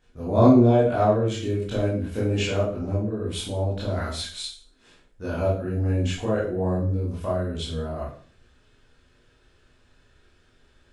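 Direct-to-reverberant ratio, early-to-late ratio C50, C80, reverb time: −8.5 dB, 3.0 dB, 8.5 dB, 0.45 s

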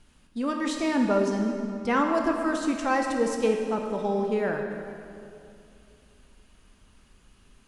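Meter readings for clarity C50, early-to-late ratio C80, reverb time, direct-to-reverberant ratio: 3.5 dB, 4.5 dB, 2.6 s, 2.0 dB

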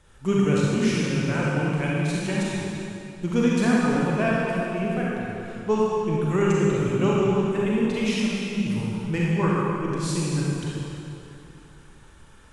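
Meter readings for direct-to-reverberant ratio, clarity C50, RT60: −6.0 dB, −4.5 dB, 2.8 s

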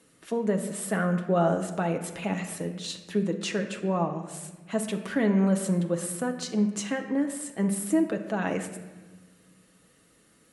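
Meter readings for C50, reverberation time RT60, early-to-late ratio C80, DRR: 9.0 dB, 1.2 s, 11.0 dB, 3.5 dB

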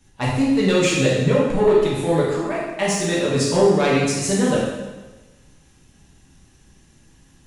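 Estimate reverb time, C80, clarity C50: 1.2 s, 2.5 dB, 0.0 dB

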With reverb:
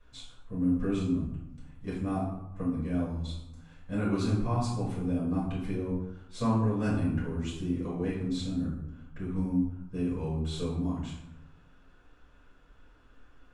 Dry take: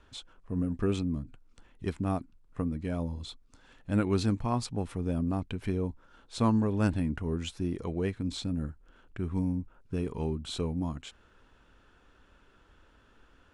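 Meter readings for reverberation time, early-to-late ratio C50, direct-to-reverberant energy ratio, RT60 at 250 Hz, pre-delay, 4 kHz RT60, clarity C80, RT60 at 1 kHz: 0.90 s, 2.5 dB, −9.5 dB, 1.1 s, 4 ms, 0.50 s, 6.0 dB, 0.95 s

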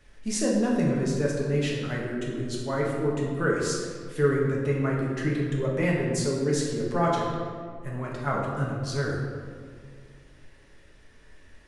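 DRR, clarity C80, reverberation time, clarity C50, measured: −3.5 dB, 3.0 dB, 2.1 s, 1.0 dB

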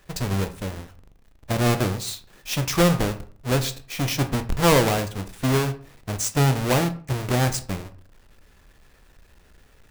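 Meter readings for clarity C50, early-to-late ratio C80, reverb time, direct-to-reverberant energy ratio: 15.0 dB, 18.5 dB, 0.45 s, 8.5 dB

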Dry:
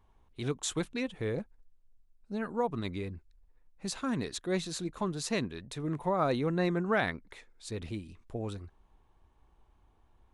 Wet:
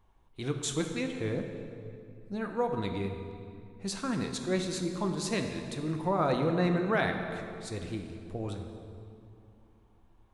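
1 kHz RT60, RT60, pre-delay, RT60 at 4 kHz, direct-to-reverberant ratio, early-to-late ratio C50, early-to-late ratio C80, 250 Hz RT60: 2.4 s, 2.6 s, 4 ms, 1.8 s, 4.0 dB, 5.5 dB, 6.5 dB, 3.3 s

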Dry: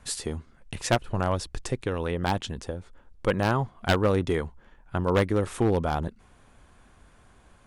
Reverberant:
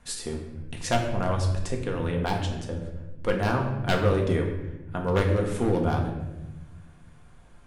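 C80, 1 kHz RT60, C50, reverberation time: 7.5 dB, 0.85 s, 5.5 dB, 1.0 s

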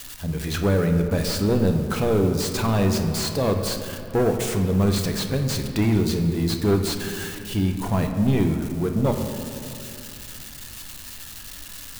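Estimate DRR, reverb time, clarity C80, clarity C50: 4.0 dB, 2.4 s, 7.5 dB, 6.0 dB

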